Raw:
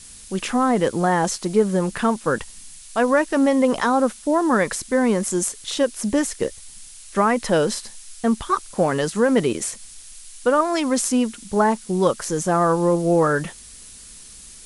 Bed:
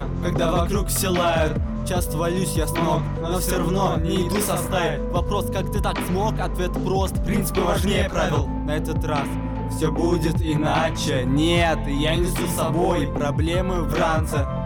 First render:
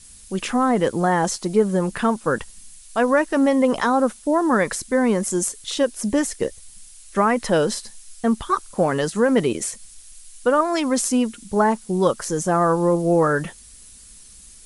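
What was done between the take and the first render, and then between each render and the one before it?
denoiser 6 dB, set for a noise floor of -43 dBFS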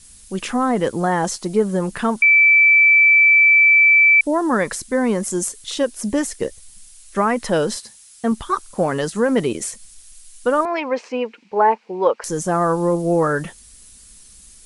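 2.22–4.21 bleep 2320 Hz -8.5 dBFS; 7.76–8.32 HPF 67 Hz; 10.65–12.24 speaker cabinet 430–3700 Hz, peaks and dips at 470 Hz +8 dB, 900 Hz +7 dB, 1300 Hz -3 dB, 2400 Hz +8 dB, 3500 Hz -9 dB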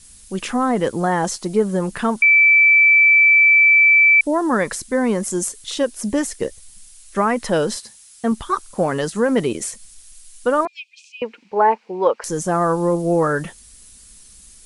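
10.67–11.22 rippled Chebyshev high-pass 2400 Hz, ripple 6 dB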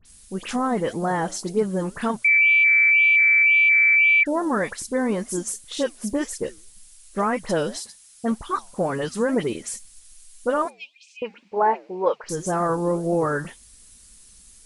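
dispersion highs, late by 56 ms, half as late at 2600 Hz; flange 1.9 Hz, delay 1.8 ms, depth 6.5 ms, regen -87%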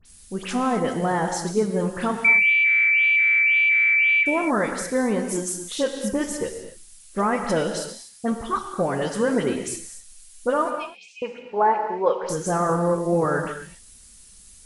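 non-linear reverb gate 0.28 s flat, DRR 5 dB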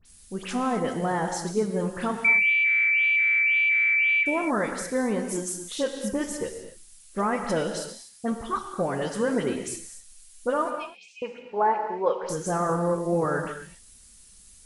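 gain -3.5 dB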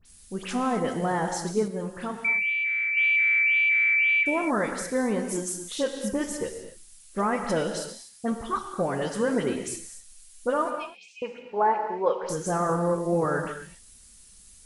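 1.68–2.97 gain -5 dB

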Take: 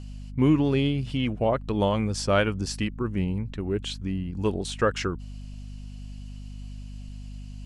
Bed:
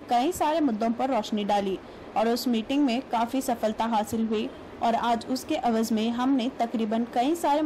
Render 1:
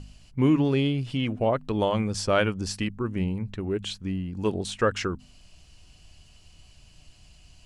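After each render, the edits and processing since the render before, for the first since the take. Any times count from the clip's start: de-hum 50 Hz, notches 5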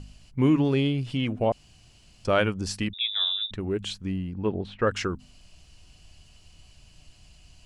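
1.52–2.25 room tone; 2.93–3.51 inverted band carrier 3700 Hz; 4.33–4.87 air absorption 390 m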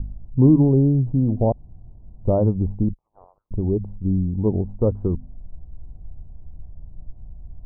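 steep low-pass 950 Hz 48 dB/oct; tilt -3.5 dB/oct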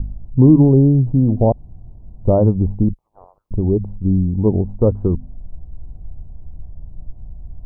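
gain +5 dB; limiter -1 dBFS, peak gain reduction 2 dB

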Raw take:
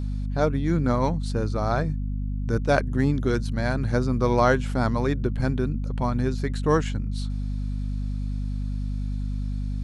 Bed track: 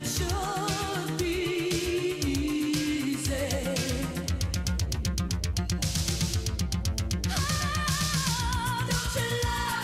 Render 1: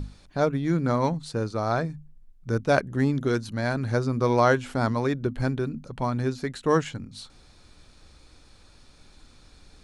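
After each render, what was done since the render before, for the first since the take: notches 50/100/150/200/250 Hz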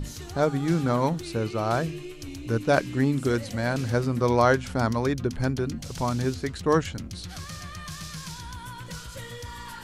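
add bed track -10.5 dB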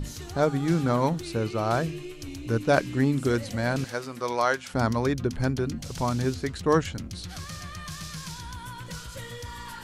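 3.84–4.74 HPF 930 Hz 6 dB/oct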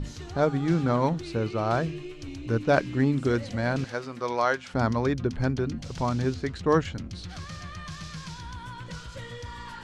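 air absorption 89 m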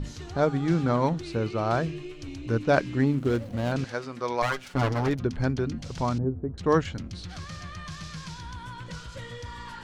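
3.06–3.72 median filter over 25 samples; 4.42–5.2 minimum comb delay 7 ms; 6.18–6.58 Bessel low-pass 580 Hz, order 4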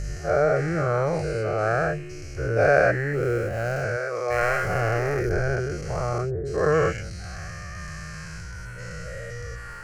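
spectral dilation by 0.24 s; fixed phaser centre 960 Hz, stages 6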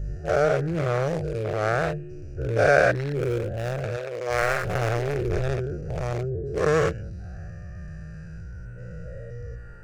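Wiener smoothing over 41 samples; high shelf 2600 Hz +8 dB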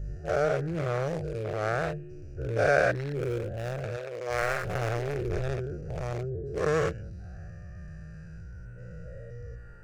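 gain -5 dB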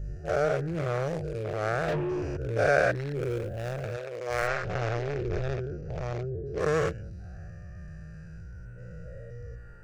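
1.88–2.37 overdrive pedal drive 35 dB, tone 1600 Hz, clips at -21 dBFS; 3.35–3.94 companded quantiser 8-bit; 4.47–6.6 LPF 6300 Hz 24 dB/oct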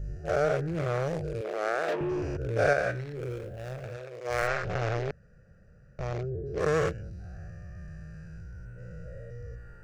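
1.41–2.01 HPF 260 Hz 24 dB/oct; 2.73–4.25 resonator 63 Hz, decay 0.46 s; 5.11–5.99 room tone

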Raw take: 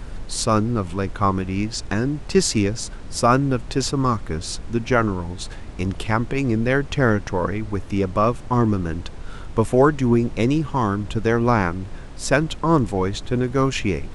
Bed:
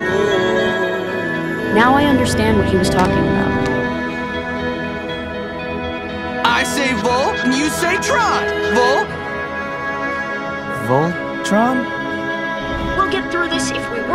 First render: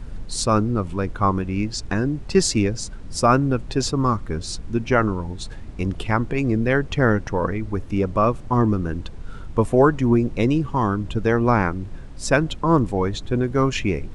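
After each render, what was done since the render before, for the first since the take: denoiser 7 dB, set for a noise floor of -35 dBFS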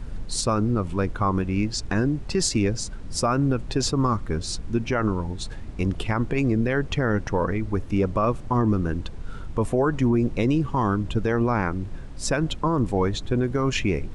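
limiter -13 dBFS, peak gain reduction 9.5 dB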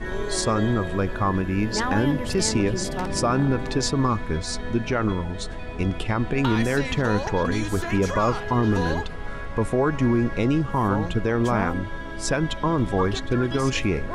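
add bed -14.5 dB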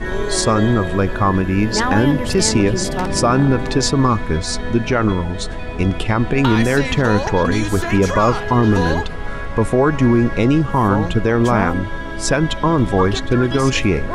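gain +7 dB

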